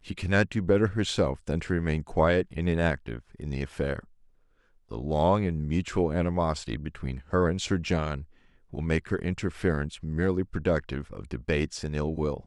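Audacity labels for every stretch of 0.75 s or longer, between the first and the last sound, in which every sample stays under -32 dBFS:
3.990000	4.910000	silence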